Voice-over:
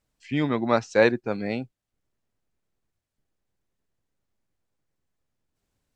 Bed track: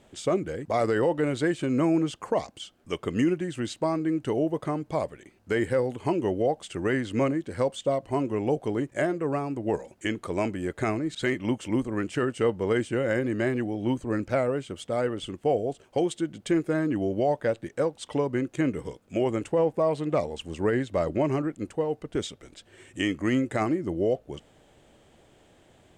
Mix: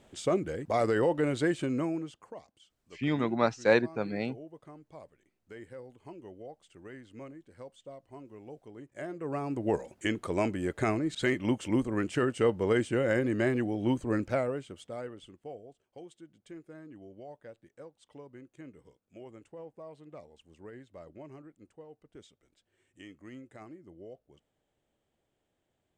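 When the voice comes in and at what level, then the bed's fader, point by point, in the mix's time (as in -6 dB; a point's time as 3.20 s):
2.70 s, -4.5 dB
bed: 1.60 s -2.5 dB
2.41 s -21 dB
8.72 s -21 dB
9.54 s -1.5 dB
14.17 s -1.5 dB
15.73 s -22.5 dB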